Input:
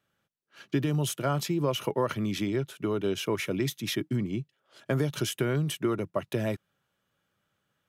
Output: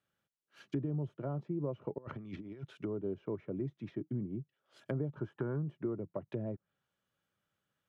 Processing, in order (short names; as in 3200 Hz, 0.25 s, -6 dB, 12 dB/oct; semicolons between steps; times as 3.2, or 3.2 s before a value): 1.98–2.65 negative-ratio compressor -34 dBFS, ratio -0.5; 5.15–5.63 spectral gain 790–1800 Hz +9 dB; treble ducked by the level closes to 610 Hz, closed at -27.5 dBFS; gain -8 dB